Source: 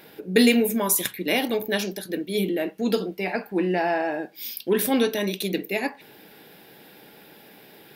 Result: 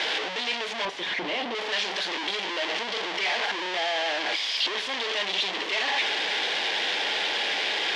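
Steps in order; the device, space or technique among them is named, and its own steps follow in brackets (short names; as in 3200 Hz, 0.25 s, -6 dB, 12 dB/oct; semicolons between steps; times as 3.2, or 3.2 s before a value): home computer beeper (infinite clipping; speaker cabinet 730–5000 Hz, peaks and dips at 1300 Hz -7 dB, 2000 Hz +3 dB, 3200 Hz +6 dB); 0.85–1.55 tilt -3.5 dB/oct; gain +1.5 dB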